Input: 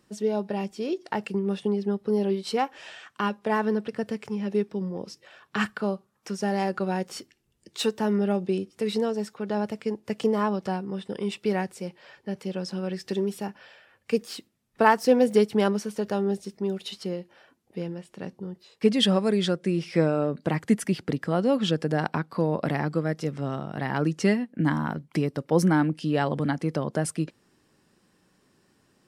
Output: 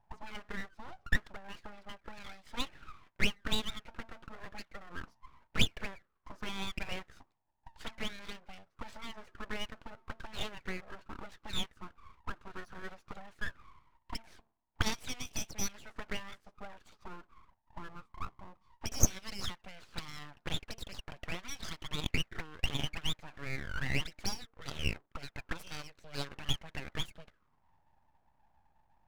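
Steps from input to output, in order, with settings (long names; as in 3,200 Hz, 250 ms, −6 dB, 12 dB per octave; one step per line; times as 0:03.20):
envelope filter 440–2,900 Hz, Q 14, up, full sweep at −18 dBFS
hum removal 225.6 Hz, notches 2
full-wave rectification
level +13 dB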